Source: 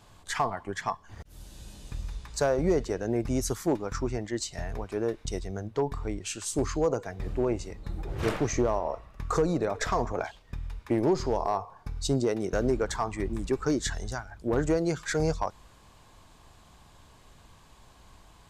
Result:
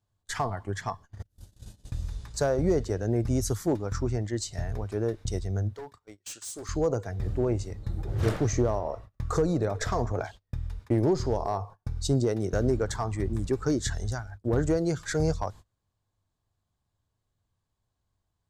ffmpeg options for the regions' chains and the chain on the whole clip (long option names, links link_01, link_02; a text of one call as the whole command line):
ffmpeg -i in.wav -filter_complex "[0:a]asettb=1/sr,asplit=3[link_01][link_02][link_03];[link_01]atrim=end=5.734[link_04];[link_02]atrim=start=5.73:end=6.69,asetpts=PTS-STARTPTS,afade=type=in:duration=0.004:curve=qsin,afade=type=out:start_time=0.956:duration=0.004:curve=qsin,highpass=frequency=1300:poles=1,asoftclip=type=hard:threshold=-35dB[link_05];[link_03]atrim=start=6.686[link_06];[link_04][link_05]acrossfade=duration=0.004:curve1=hsin:curve2=qsin[link_07];[link_07][link_06]acrossfade=duration=0.004:curve1=qsin:curve2=hsin,agate=range=-27dB:threshold=-43dB:ratio=16:detection=peak,equalizer=frequency=100:width_type=o:width=0.67:gain=11,equalizer=frequency=1000:width_type=o:width=0.67:gain=-4,equalizer=frequency=2500:width_type=o:width=0.67:gain=-6" out.wav